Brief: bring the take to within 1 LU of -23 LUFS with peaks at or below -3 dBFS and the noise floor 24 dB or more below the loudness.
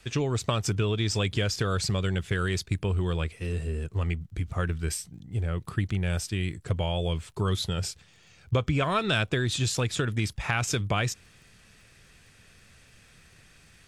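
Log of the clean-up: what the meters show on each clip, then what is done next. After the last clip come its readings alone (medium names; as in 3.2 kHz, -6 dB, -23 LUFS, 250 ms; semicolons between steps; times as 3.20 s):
tick rate 31 per s; loudness -29.0 LUFS; peak level -12.5 dBFS; loudness target -23.0 LUFS
-> de-click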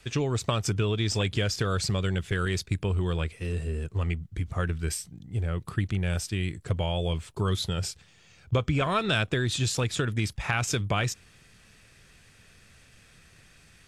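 tick rate 0 per s; loudness -29.0 LUFS; peak level -12.5 dBFS; loudness target -23.0 LUFS
-> trim +6 dB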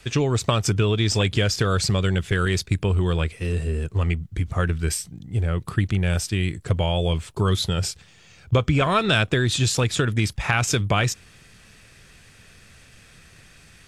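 loudness -23.0 LUFS; peak level -6.5 dBFS; noise floor -51 dBFS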